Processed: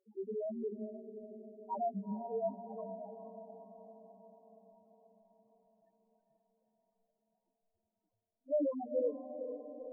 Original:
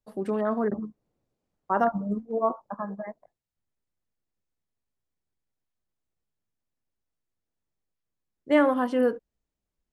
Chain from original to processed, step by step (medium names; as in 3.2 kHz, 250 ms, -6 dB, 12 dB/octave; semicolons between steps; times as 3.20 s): high-pass 170 Hz 12 dB/octave; reverb removal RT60 0.68 s; Chebyshev low-pass 1.3 kHz, order 6; hum notches 60/120/180/240/300/360/420 Hz; crackle 89 per s -43 dBFS; sample-and-hold 11×; flange 0.33 Hz, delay 5.3 ms, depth 6.6 ms, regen +83%; loudest bins only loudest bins 1; echo that smears into a reverb 451 ms, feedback 61%, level -9 dB; trim +2 dB